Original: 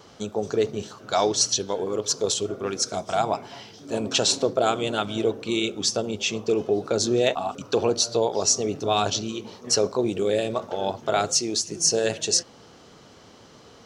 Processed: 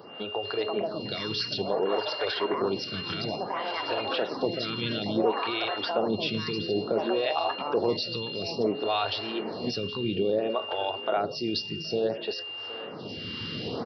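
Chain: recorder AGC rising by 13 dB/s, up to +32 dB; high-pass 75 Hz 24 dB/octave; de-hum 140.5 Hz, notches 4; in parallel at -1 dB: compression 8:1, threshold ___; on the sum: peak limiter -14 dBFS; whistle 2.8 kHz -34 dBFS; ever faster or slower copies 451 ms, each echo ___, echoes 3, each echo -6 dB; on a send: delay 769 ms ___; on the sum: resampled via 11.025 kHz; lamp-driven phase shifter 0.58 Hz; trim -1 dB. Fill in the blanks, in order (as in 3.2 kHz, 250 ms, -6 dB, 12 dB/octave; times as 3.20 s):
-35 dBFS, +7 st, -16 dB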